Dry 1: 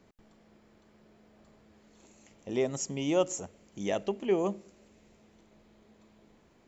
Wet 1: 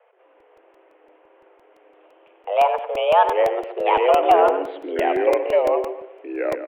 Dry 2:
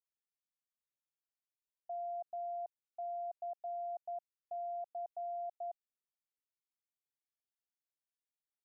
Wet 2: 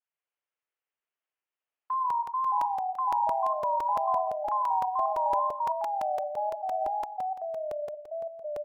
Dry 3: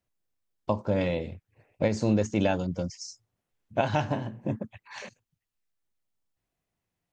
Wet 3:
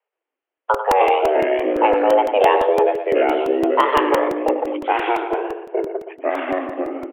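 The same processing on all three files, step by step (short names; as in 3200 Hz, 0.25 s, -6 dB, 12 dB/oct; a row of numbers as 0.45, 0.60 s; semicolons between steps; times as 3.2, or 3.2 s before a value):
in parallel at +3 dB: limiter -19 dBFS; on the sum: wow and flutter 140 cents; HPF 140 Hz 24 dB/oct; feedback echo 96 ms, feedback 37%, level -9.5 dB; gate -47 dBFS, range -8 dB; frequency shift +300 Hz; echoes that change speed 0.124 s, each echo -4 st, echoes 2; steep low-pass 3100 Hz 72 dB/oct; crackling interface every 0.17 s, samples 128, repeat, from 0.4; gain +4.5 dB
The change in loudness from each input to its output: +12.5, +13.5, +10.5 LU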